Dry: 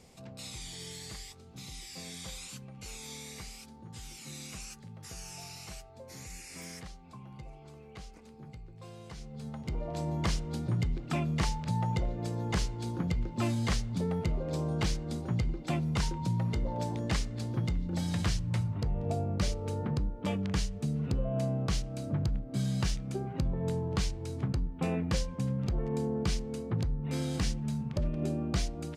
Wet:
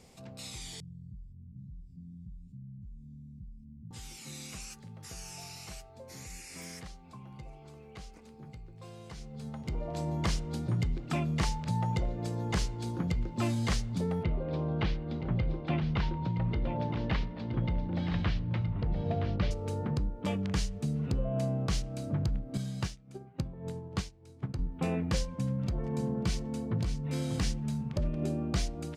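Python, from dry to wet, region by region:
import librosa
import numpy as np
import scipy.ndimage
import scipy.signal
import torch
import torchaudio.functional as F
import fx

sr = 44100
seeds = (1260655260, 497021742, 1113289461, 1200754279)

y = fx.chain(x, sr, fx.cheby2_lowpass(hz=510.0, order=4, stop_db=50),
    fx.env_flatten(amount_pct=50), at=(0.8, 3.91))
y = fx.chain(y, sr, fx.lowpass(hz=3600.0, slope=24),
    fx.echo_single(ms=970, db=-9.0), at=(14.23, 19.51))
y = fx.chain(y, sr, fx.highpass(hz=54.0, slope=12),
    fx.upward_expand(threshold_db=-39.0, expansion=2.5), at=(22.57, 24.59))
y = fx.chain(y, sr, fx.notch_comb(f0_hz=410.0),
    fx.echo_single(ms=589, db=-8.5), at=(25.25, 27.39))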